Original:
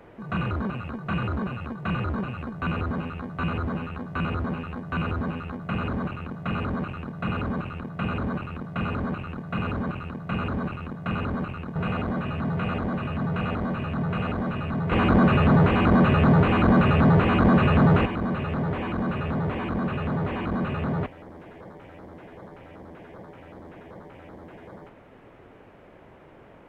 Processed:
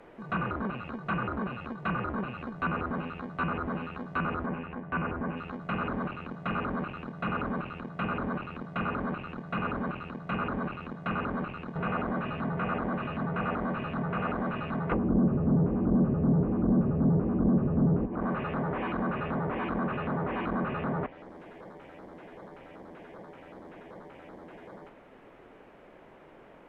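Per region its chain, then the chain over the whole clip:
4.46–5.37 s: low-pass 2.7 kHz 24 dB/octave + band-stop 1.3 kHz, Q 8.4
whole clip: dynamic bell 1.3 kHz, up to +4 dB, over -34 dBFS, Q 0.83; low-pass that closes with the level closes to 330 Hz, closed at -17 dBFS; peaking EQ 89 Hz -12 dB 1.2 oct; trim -2 dB

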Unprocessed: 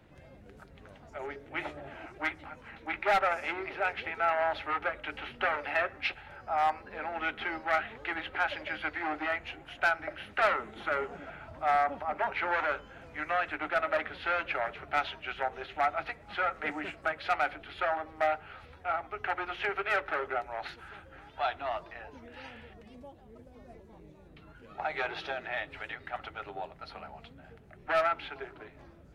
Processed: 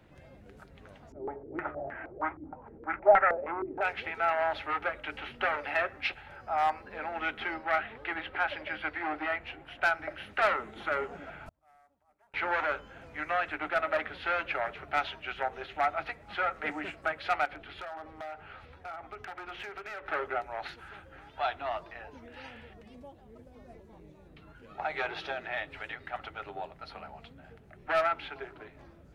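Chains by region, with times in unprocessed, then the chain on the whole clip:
1.12–3.81 s: distance through air 300 m + step-sequenced low-pass 6.4 Hz 320–1800 Hz
7.54–9.83 s: tone controls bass -1 dB, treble -6 dB + band-stop 6.6 kHz, Q 7.6
11.46–12.34 s: CVSD coder 64 kbps + bass shelf 170 Hz +9.5 dB + inverted gate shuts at -35 dBFS, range -37 dB
17.45–20.07 s: treble shelf 6 kHz -7 dB + compression, threshold -37 dBFS + overload inside the chain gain 34.5 dB
whole clip: none

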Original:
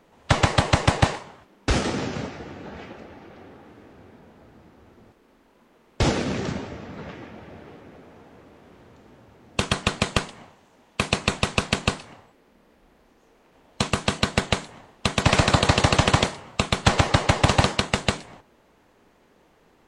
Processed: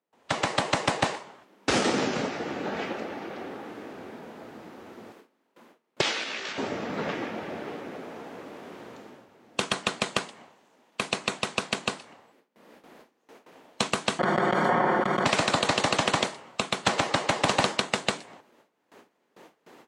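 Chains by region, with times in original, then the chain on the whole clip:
6.01–6.58 s: band-pass filter 2.9 kHz, Q 1 + doubling 18 ms -5 dB
14.19–15.26 s: comb filter that takes the minimum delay 5.5 ms + Savitzky-Golay filter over 41 samples + level flattener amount 100%
whole clip: gate with hold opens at -48 dBFS; high-pass 230 Hz 12 dB/octave; level rider gain up to 16 dB; trim -7 dB

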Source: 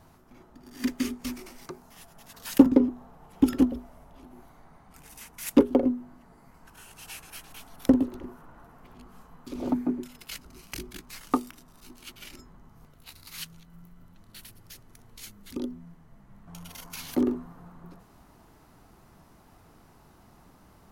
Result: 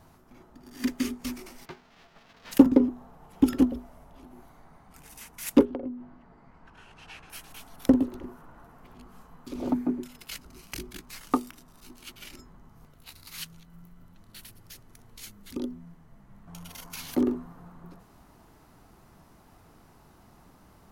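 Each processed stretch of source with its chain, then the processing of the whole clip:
1.64–2.51 s: formants flattened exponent 0.3 + distance through air 240 m
5.65–7.30 s: low-pass 3.2 kHz + compression 2.5:1, threshold -36 dBFS
whole clip: none

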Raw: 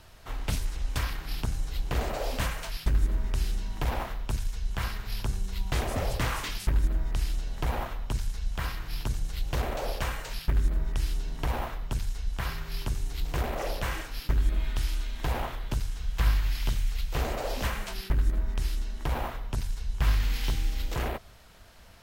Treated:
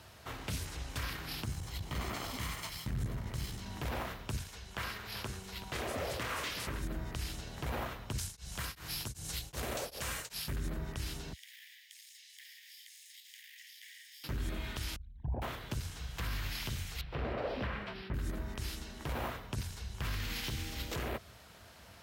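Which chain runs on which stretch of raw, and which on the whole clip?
1.44–3.66 s: comb filter that takes the minimum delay 0.95 ms + transformer saturation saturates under 95 Hz
4.41–6.81 s: tone controls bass -8 dB, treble -3 dB + delay 376 ms -12.5 dB
8.18–10.56 s: peaking EQ 9.2 kHz +11.5 dB 1.9 oct + tremolo of two beating tones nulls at 2.6 Hz
11.33–14.24 s: comb filter that takes the minimum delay 0.58 ms + steep high-pass 1.8 kHz 96 dB/octave + compression 4:1, threshold -52 dBFS
14.96–15.42 s: resonances exaggerated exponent 3 + dynamic bell 1.8 kHz, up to -7 dB, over -57 dBFS, Q 0.79
17.01–18.14 s: distance through air 330 m + band-stop 6.5 kHz, Q 7.6
whole clip: dynamic bell 820 Hz, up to -5 dB, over -50 dBFS, Q 2.3; high-pass 67 Hz 24 dB/octave; peak limiter -28 dBFS

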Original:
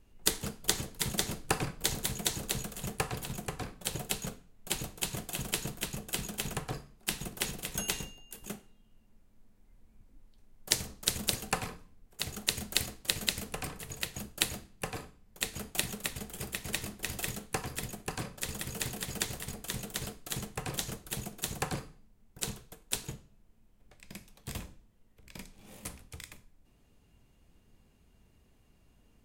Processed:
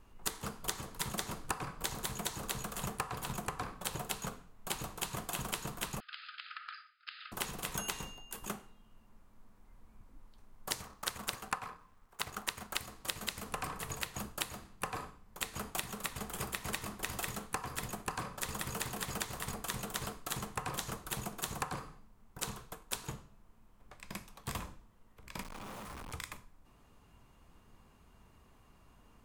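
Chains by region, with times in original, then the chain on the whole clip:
6.00–7.32 s: brick-wall FIR band-pass 1.2–5.1 kHz + compression 3:1, threshold -49 dBFS
10.82–12.80 s: companding laws mixed up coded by A + peaking EQ 1.3 kHz +6 dB 2.3 oct
25.43–26.12 s: one-bit comparator + treble shelf 4.6 kHz -8 dB
whole clip: peaking EQ 1.1 kHz +12 dB 0.98 oct; compression 6:1, threshold -36 dBFS; trim +1.5 dB

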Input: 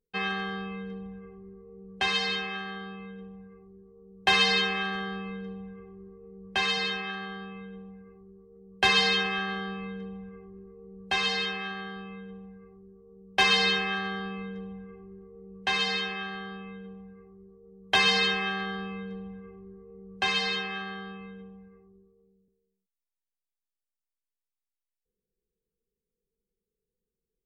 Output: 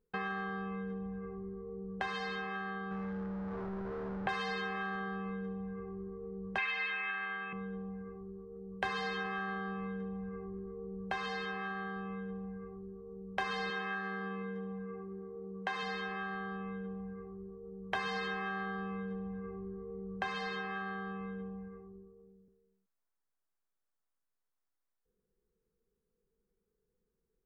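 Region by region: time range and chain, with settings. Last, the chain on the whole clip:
2.91–4.29 s: jump at every zero crossing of -38 dBFS + distance through air 250 m
6.58–7.53 s: resonant low-pass 2.4 kHz, resonance Q 6.9 + tilt EQ +4 dB/octave
13.70–15.83 s: high-pass 260 Hz 6 dB/octave + delay 73 ms -10.5 dB
whole clip: resonant high shelf 2 kHz -9.5 dB, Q 1.5; compression 3:1, threshold -44 dBFS; trim +5 dB

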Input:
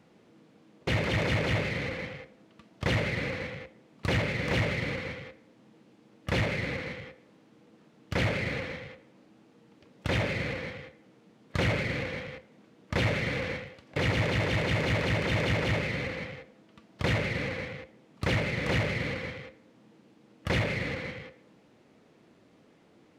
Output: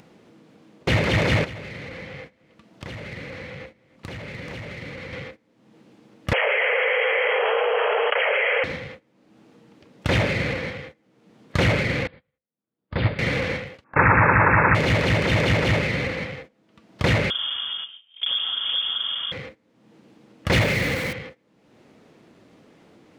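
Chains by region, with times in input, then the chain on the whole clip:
1.44–5.13 s: compression 8:1, threshold -40 dBFS + delay 300 ms -13.5 dB
6.33–8.64 s: brick-wall FIR band-pass 410–3300 Hz + delay 272 ms -14 dB + level flattener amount 100%
12.07–13.19 s: rippled Chebyshev low-pass 4.9 kHz, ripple 3 dB + tilt EQ -1.5 dB/octave + upward expansion 2.5:1, over -47 dBFS
13.84–14.75 s: brick-wall FIR low-pass 2.7 kHz + high-order bell 1.2 kHz +14 dB 1.2 oct
17.30–19.32 s: tilt EQ -3.5 dB/octave + compression 3:1, threshold -35 dBFS + frequency inversion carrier 3.4 kHz
20.52–21.13 s: jump at every zero crossing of -42 dBFS + treble shelf 4 kHz +5.5 dB
whole clip: gate -48 dBFS, range -17 dB; upward compressor, threshold -45 dBFS; trim +7.5 dB

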